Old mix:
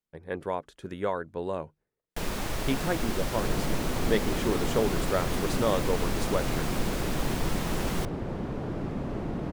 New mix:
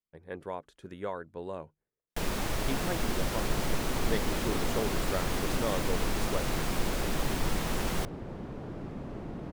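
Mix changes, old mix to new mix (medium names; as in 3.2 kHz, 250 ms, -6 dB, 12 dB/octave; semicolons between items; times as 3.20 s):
speech -6.5 dB; second sound -7.0 dB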